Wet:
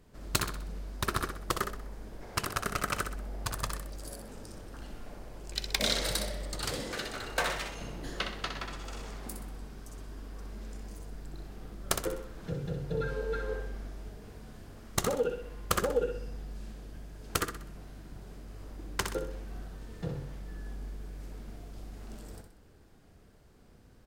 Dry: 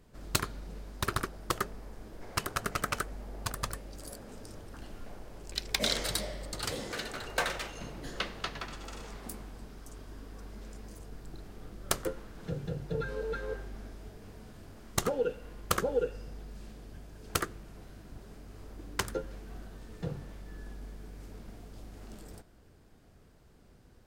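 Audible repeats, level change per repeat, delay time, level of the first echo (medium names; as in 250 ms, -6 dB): 4, -7.5 dB, 63 ms, -7.0 dB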